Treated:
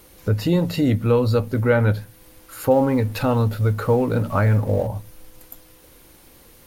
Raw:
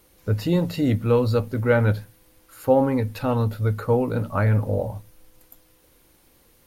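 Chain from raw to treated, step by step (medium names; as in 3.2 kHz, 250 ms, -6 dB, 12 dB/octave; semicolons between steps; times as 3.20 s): 2.71–4.87 s: companding laws mixed up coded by mu; compression 1.5:1, threshold -35 dBFS, peak gain reduction 8.5 dB; trim +8.5 dB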